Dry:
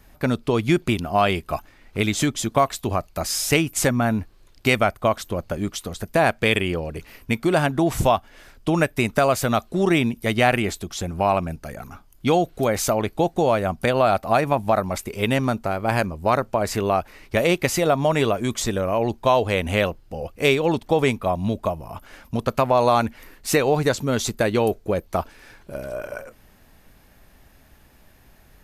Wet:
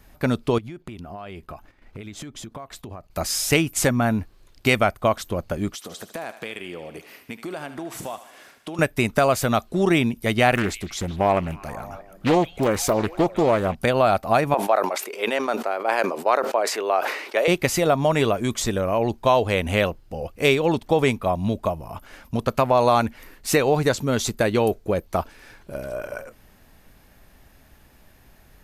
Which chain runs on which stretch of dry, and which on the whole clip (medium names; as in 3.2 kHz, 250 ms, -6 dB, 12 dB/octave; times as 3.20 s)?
0.58–3.11 s: treble shelf 3.1 kHz -8.5 dB + compression 10:1, threshold -33 dBFS + gate -52 dBFS, range -8 dB
5.74–8.79 s: high-pass 220 Hz + compression 3:1, threshold -33 dBFS + thinning echo 76 ms, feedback 71%, high-pass 550 Hz, level -12 dB
10.55–13.75 s: repeats whose band climbs or falls 155 ms, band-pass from 2.8 kHz, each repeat -0.7 oct, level -10.5 dB + loudspeaker Doppler distortion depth 0.54 ms
14.54–17.48 s: high-pass 380 Hz 24 dB/octave + treble shelf 6.4 kHz -10 dB + decay stretcher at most 62 dB/s
whole clip: none